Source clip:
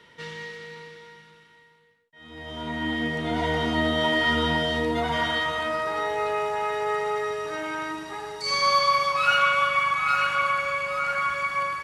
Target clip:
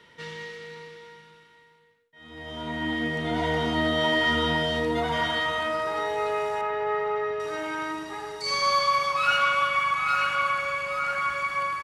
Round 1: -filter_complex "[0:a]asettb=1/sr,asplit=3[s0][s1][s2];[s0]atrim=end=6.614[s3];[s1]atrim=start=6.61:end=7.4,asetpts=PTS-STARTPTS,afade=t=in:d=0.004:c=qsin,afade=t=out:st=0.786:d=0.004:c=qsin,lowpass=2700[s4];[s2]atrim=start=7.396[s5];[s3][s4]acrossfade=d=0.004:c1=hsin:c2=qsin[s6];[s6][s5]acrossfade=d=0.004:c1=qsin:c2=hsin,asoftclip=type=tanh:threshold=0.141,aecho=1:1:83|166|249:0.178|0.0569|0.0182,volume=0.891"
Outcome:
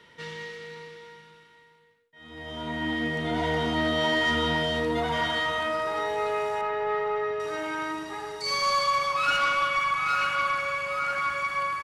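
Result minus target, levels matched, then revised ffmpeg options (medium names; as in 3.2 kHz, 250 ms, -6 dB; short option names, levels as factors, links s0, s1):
saturation: distortion +10 dB
-filter_complex "[0:a]asettb=1/sr,asplit=3[s0][s1][s2];[s0]atrim=end=6.614[s3];[s1]atrim=start=6.61:end=7.4,asetpts=PTS-STARTPTS,afade=t=in:d=0.004:c=qsin,afade=t=out:st=0.786:d=0.004:c=qsin,lowpass=2700[s4];[s2]atrim=start=7.396[s5];[s3][s4]acrossfade=d=0.004:c1=hsin:c2=qsin[s6];[s6][s5]acrossfade=d=0.004:c1=qsin:c2=hsin,asoftclip=type=tanh:threshold=0.299,aecho=1:1:83|166|249:0.178|0.0569|0.0182,volume=0.891"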